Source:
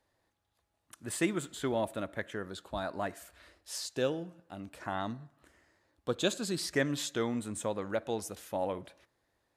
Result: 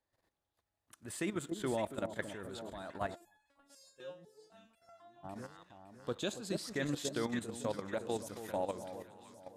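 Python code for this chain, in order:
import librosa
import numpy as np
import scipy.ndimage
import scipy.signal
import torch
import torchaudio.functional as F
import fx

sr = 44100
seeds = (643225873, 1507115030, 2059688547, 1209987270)

y = fx.echo_alternate(x, sr, ms=280, hz=960.0, feedback_pct=71, wet_db=-7.0)
y = fx.level_steps(y, sr, step_db=11)
y = fx.resonator_held(y, sr, hz=4.0, low_hz=180.0, high_hz=840.0, at=(3.14, 5.23), fade=0.02)
y = y * 10.0 ** (-1.0 / 20.0)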